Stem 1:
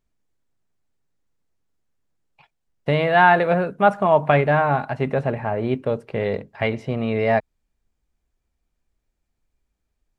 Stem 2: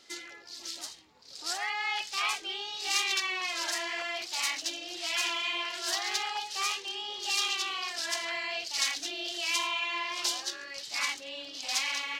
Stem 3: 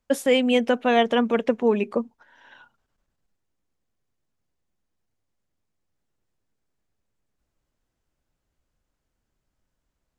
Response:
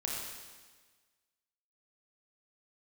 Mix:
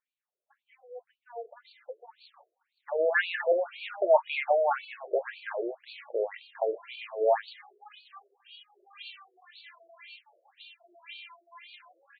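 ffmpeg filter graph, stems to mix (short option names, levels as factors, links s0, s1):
-filter_complex "[0:a]volume=1.26[s0];[1:a]adelay=1550,volume=0.422[s1];[2:a]lowpass=1000,flanger=delay=5.1:depth=10:regen=47:speed=0.51:shape=triangular,adelay=400,volume=0.335[s2];[s0][s1][s2]amix=inputs=3:normalize=0,highpass=360,flanger=delay=7.8:depth=2.8:regen=-58:speed=0.85:shape=sinusoidal,afftfilt=real='re*between(b*sr/1024,460*pow(3300/460,0.5+0.5*sin(2*PI*1.9*pts/sr))/1.41,460*pow(3300/460,0.5+0.5*sin(2*PI*1.9*pts/sr))*1.41)':imag='im*between(b*sr/1024,460*pow(3300/460,0.5+0.5*sin(2*PI*1.9*pts/sr))/1.41,460*pow(3300/460,0.5+0.5*sin(2*PI*1.9*pts/sr))*1.41)':win_size=1024:overlap=0.75"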